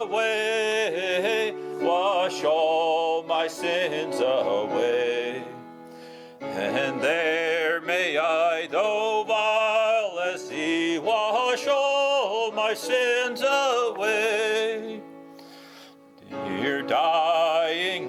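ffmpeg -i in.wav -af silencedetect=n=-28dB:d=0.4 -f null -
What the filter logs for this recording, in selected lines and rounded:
silence_start: 5.47
silence_end: 6.42 | silence_duration: 0.95
silence_start: 14.96
silence_end: 16.33 | silence_duration: 1.36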